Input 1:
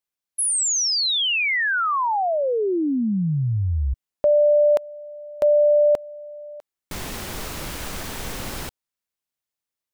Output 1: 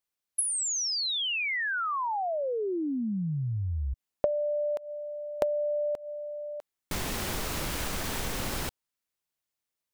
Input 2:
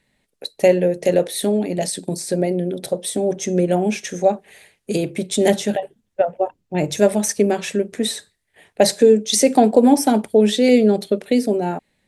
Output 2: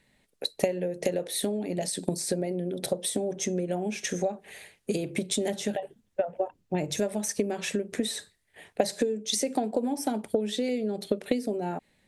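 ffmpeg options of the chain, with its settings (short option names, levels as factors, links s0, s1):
-af "acompressor=threshold=0.0282:ratio=5:attack=52:release=227:knee=1:detection=peak"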